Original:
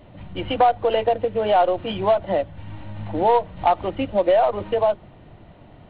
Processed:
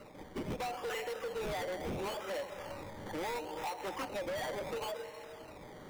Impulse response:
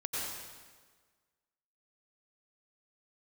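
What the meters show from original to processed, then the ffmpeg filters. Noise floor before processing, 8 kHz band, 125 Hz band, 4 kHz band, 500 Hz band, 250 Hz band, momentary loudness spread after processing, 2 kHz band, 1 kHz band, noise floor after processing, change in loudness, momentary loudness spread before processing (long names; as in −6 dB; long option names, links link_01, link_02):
−48 dBFS, can't be measured, −14.5 dB, −11.0 dB, −19.0 dB, −14.5 dB, 8 LU, −8.0 dB, −20.0 dB, −51 dBFS, −19.0 dB, 15 LU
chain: -filter_complex "[0:a]aexciter=amount=7:drive=9.2:freq=2200,acrossover=split=310 2000:gain=0.141 1 0.224[link_01][link_02][link_03];[link_01][link_02][link_03]amix=inputs=3:normalize=0,acompressor=threshold=-24dB:ratio=6,asplit=2[link_04][link_05];[1:a]atrim=start_sample=2205,adelay=130[link_06];[link_05][link_06]afir=irnorm=-1:irlink=0,volume=-14dB[link_07];[link_04][link_07]amix=inputs=2:normalize=0,acrusher=samples=13:mix=1:aa=0.000001:lfo=1:lforange=7.8:lforate=0.73,areverse,acompressor=mode=upward:threshold=-37dB:ratio=2.5,areverse,asuperstop=centerf=680:order=12:qfactor=8,highshelf=frequency=3300:gain=-8,asoftclip=type=hard:threshold=-30dB,volume=-5dB"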